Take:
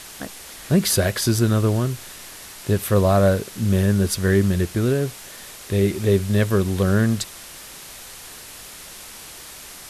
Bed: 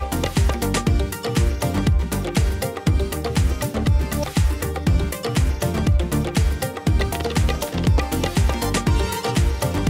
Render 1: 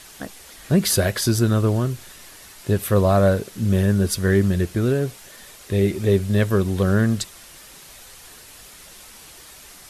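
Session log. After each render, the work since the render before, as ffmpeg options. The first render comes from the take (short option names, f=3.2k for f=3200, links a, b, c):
-af "afftdn=nr=6:nf=-40"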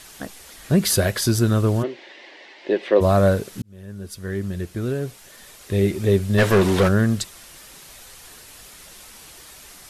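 -filter_complex "[0:a]asplit=3[a][b][c];[a]afade=t=out:st=1.82:d=0.02[d];[b]highpass=f=280:w=0.5412,highpass=f=280:w=1.3066,equalizer=f=340:t=q:w=4:g=8,equalizer=f=560:t=q:w=4:g=7,equalizer=f=830:t=q:w=4:g=5,equalizer=f=1.3k:t=q:w=4:g=-9,equalizer=f=2k:t=q:w=4:g=9,equalizer=f=2.9k:t=q:w=4:g=3,lowpass=f=4.2k:w=0.5412,lowpass=f=4.2k:w=1.3066,afade=t=in:st=1.82:d=0.02,afade=t=out:st=3:d=0.02[e];[c]afade=t=in:st=3:d=0.02[f];[d][e][f]amix=inputs=3:normalize=0,asplit=3[g][h][i];[g]afade=t=out:st=6.37:d=0.02[j];[h]asplit=2[k][l];[l]highpass=f=720:p=1,volume=25dB,asoftclip=type=tanh:threshold=-7.5dB[m];[k][m]amix=inputs=2:normalize=0,lowpass=f=2.5k:p=1,volume=-6dB,afade=t=in:st=6.37:d=0.02,afade=t=out:st=6.87:d=0.02[n];[i]afade=t=in:st=6.87:d=0.02[o];[j][n][o]amix=inputs=3:normalize=0,asplit=2[p][q];[p]atrim=end=3.62,asetpts=PTS-STARTPTS,afade=t=out:st=3.616:d=0.004:c=hsin[r];[q]atrim=start=3.62,asetpts=PTS-STARTPTS,afade=t=in:d=2.25[s];[r][s]concat=n=2:v=0:a=1"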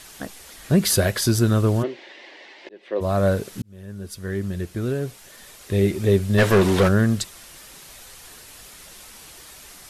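-filter_complex "[0:a]asplit=2[a][b];[a]atrim=end=2.69,asetpts=PTS-STARTPTS,afade=t=out:st=2.686:d=0.004:c=hsin[c];[b]atrim=start=2.69,asetpts=PTS-STARTPTS,afade=t=in:d=0.78[d];[c][d]concat=n=2:v=0:a=1"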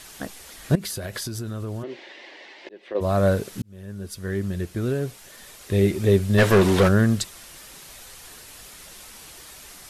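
-filter_complex "[0:a]asettb=1/sr,asplit=3[a][b][c];[a]atrim=end=0.754[d];[b]atrim=start=0.75:end=2.95,asetpts=PTS-STARTPTS,afade=t=in:d=0.004:c=qsin,afade=t=out:st=2.196:d=0.004:c=qsin,acompressor=threshold=-27dB:ratio=20:attack=3.2:release=140:knee=1:detection=peak[e];[c]atrim=start=2.946[f];[d][e]acrossfade=d=0.004:c1=hsin:c2=qsin[g];[g][f]acrossfade=d=0.004:c1=qsin:c2=hsin"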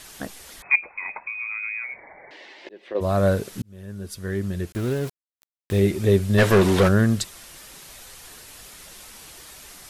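-filter_complex "[0:a]asettb=1/sr,asplit=3[a][b][c];[a]atrim=end=0.624[d];[b]atrim=start=0.62:end=2.31,asetpts=PTS-STARTPTS,afade=t=in:d=0.004:c=qsin,afade=t=out:st=1.686:d=0.004:c=qsin,lowpass=f=2.2k:t=q:w=0.5098,lowpass=f=2.2k:t=q:w=0.6013,lowpass=f=2.2k:t=q:w=0.9,lowpass=f=2.2k:t=q:w=2.563,afreqshift=-2600[e];[c]atrim=start=2.306[f];[d][e]acrossfade=d=0.004:c1=hsin:c2=qsin[g];[g][f]acrossfade=d=0.004:c1=qsin:c2=hsin,asettb=1/sr,asplit=3[h][i][j];[h]atrim=end=4.724[k];[i]atrim=start=4.72:end=5.8,asetpts=PTS-STARTPTS,afade=t=in:d=0.004:c=qsin,afade=t=out:st=1.076:d=0.004:c=qsin,aeval=exprs='val(0)*gte(abs(val(0)),0.0211)':c=same[l];[j]atrim=start=5.796[m];[k][l]acrossfade=d=0.004:c1=hsin:c2=qsin[n];[n][m]acrossfade=d=0.004:c1=qsin:c2=hsin"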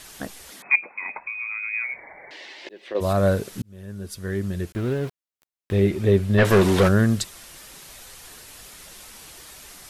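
-filter_complex "[0:a]asettb=1/sr,asplit=3[a][b][c];[a]atrim=end=0.524[d];[b]atrim=start=0.52:end=1.17,asetpts=PTS-STARTPTS,afade=t=in:d=0.004:c=qsin,afade=t=out:st=0.646:d=0.004:c=qsin,highpass=f=220:t=q:w=2.1[e];[c]atrim=start=1.166[f];[d][e]acrossfade=d=0.004:c1=hsin:c2=qsin[g];[g][f]acrossfade=d=0.004:c1=qsin:c2=hsin,asettb=1/sr,asplit=3[h][i][j];[h]atrim=end=1.734[k];[i]atrim=start=1.73:end=3.13,asetpts=PTS-STARTPTS,afade=t=in:d=0.004:c=qsin,afade=t=out:st=1.396:d=0.004:c=qsin,highshelf=f=2.5k:g=8.5[l];[j]atrim=start=3.126[m];[k][l]acrossfade=d=0.004:c1=hsin:c2=qsin[n];[n][m]acrossfade=d=0.004:c1=qsin:c2=hsin,asettb=1/sr,asplit=3[o][p][q];[o]atrim=end=4.714[r];[p]atrim=start=4.71:end=6.45,asetpts=PTS-STARTPTS,afade=t=in:d=0.004:c=qsin,afade=t=out:st=1.736:d=0.004:c=qsin,acrossover=split=3800[s][t];[t]acompressor=threshold=-50dB:ratio=4:attack=1:release=60[u];[s][u]amix=inputs=2:normalize=0[v];[q]atrim=start=6.446[w];[r][v]acrossfade=d=0.004:c1=hsin:c2=qsin[x];[x][w]acrossfade=d=0.004:c1=qsin:c2=hsin"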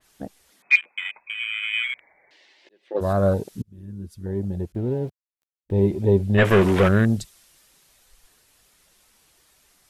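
-af "afwtdn=0.0355,adynamicequalizer=threshold=0.00891:dfrequency=2600:dqfactor=0.7:tfrequency=2600:tqfactor=0.7:attack=5:release=100:ratio=0.375:range=4:mode=boostabove:tftype=highshelf"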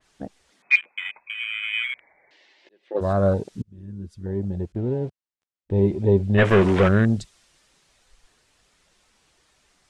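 -af "lowpass=f=9.1k:w=0.5412,lowpass=f=9.1k:w=1.3066,highshelf=f=5.3k:g=-6"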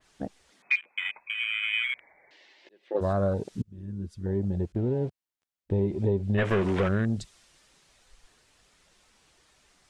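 -af "acompressor=threshold=-23dB:ratio=5"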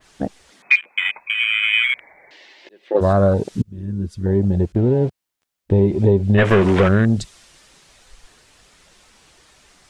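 -af "volume=11dB"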